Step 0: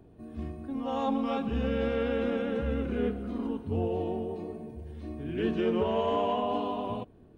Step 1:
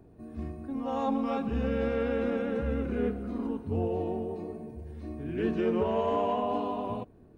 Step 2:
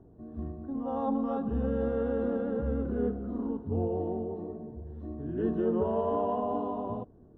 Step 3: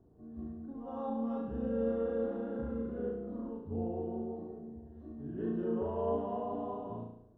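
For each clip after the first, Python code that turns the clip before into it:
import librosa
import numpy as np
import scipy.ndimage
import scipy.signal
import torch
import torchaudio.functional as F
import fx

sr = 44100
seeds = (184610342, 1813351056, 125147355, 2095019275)

y1 = fx.peak_eq(x, sr, hz=3200.0, db=-8.0, octaves=0.4)
y2 = scipy.signal.lfilter(np.full(19, 1.0 / 19), 1.0, y1)
y3 = fx.room_flutter(y2, sr, wall_m=6.0, rt60_s=0.67)
y3 = F.gain(torch.from_numpy(y3), -9.0).numpy()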